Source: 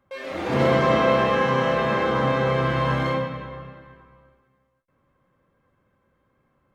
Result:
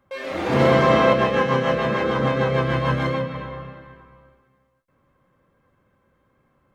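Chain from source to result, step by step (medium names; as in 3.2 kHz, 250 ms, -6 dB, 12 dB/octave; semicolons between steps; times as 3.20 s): 1.13–3.35 s: rotary cabinet horn 6.7 Hz; trim +3 dB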